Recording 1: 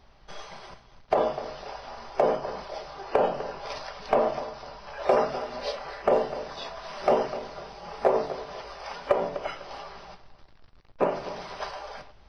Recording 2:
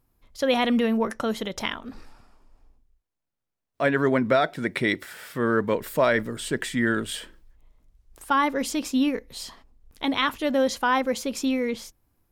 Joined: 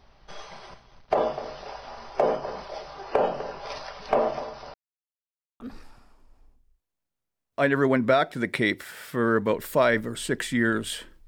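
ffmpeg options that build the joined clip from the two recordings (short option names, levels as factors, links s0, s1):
-filter_complex "[0:a]apad=whole_dur=11.27,atrim=end=11.27,asplit=2[s0][s1];[s0]atrim=end=4.74,asetpts=PTS-STARTPTS,afade=t=out:st=4.736:d=0.004:c=hsin[s2];[s1]atrim=start=4.74:end=5.6,asetpts=PTS-STARTPTS,volume=0[s3];[1:a]atrim=start=1.82:end=7.49,asetpts=PTS-STARTPTS,afade=t=in:d=0.004:c=hsin[s4];[s2][s3][s4]concat=n=3:v=0:a=1"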